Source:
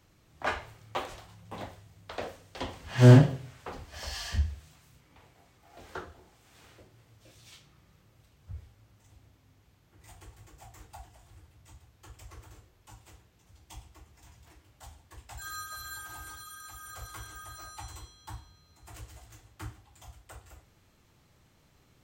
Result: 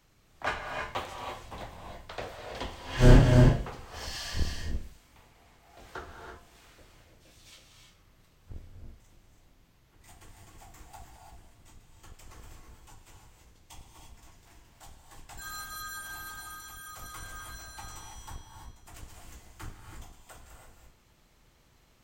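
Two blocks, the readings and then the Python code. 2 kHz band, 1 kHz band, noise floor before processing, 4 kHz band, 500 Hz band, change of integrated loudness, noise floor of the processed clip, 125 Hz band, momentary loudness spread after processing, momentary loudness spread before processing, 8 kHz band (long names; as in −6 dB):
+1.5 dB, +1.0 dB, −65 dBFS, +2.0 dB, 0.0 dB, −2.0 dB, −63 dBFS, −2.0 dB, 26 LU, 24 LU, +1.5 dB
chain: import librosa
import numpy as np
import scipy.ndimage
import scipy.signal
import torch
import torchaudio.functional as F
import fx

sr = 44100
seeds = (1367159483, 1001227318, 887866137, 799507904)

y = fx.octave_divider(x, sr, octaves=2, level_db=4.0)
y = fx.low_shelf(y, sr, hz=390.0, db=-6.5)
y = fx.rev_gated(y, sr, seeds[0], gate_ms=360, shape='rising', drr_db=2.5)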